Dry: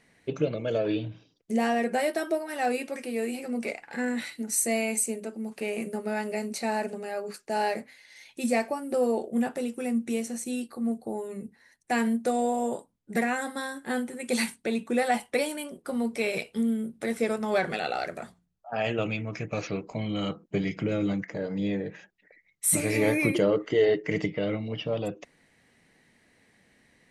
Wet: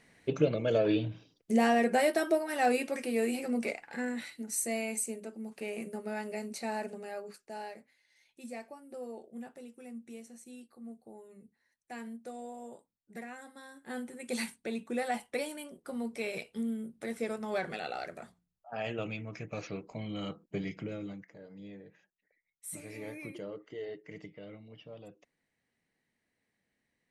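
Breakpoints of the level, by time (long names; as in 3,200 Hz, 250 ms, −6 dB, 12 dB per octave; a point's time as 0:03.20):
0:03.48 0 dB
0:04.18 −7 dB
0:07.13 −7 dB
0:07.76 −17.5 dB
0:13.61 −17.5 dB
0:14.05 −8 dB
0:20.71 −8 dB
0:21.36 −19 dB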